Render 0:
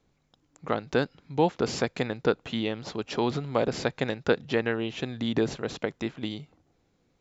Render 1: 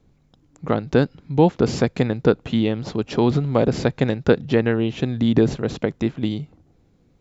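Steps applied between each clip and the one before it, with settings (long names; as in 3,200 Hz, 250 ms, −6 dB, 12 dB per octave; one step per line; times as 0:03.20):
low-shelf EQ 400 Hz +12 dB
level +2 dB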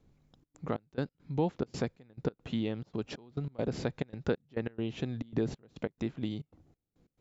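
downward compressor 1.5 to 1, threshold −32 dBFS, peak gain reduction 8.5 dB
gate pattern "xxxx.xx..x." 138 BPM −24 dB
level −7 dB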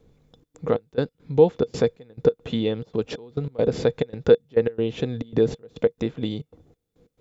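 hollow resonant body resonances 470/3,500 Hz, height 14 dB, ringing for 70 ms
level +7 dB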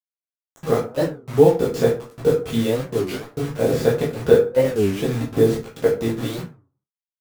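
bit-depth reduction 6 bits, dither none
convolution reverb RT60 0.40 s, pre-delay 7 ms, DRR −6 dB
wow of a warped record 33 1/3 rpm, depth 250 cents
level −2.5 dB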